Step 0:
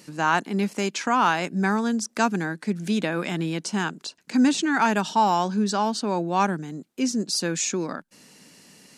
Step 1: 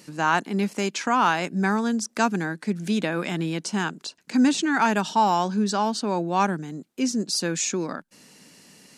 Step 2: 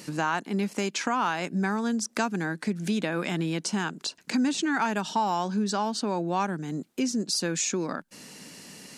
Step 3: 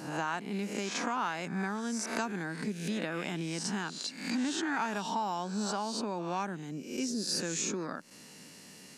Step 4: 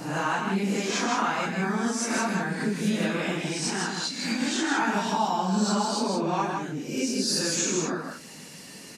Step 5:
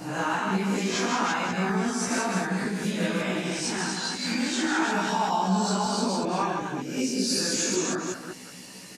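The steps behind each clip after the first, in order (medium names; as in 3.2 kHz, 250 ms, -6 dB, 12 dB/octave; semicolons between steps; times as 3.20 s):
no audible change
compression 2.5:1, threshold -34 dBFS, peak gain reduction 12.5 dB; trim +5.5 dB
reverse spectral sustain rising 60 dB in 0.66 s; trim -8 dB
phase randomisation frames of 100 ms; delay 159 ms -4.5 dB; trim +6.5 dB
chunks repeated in reverse 189 ms, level -4.5 dB; doubling 16 ms -4 dB; trim -2.5 dB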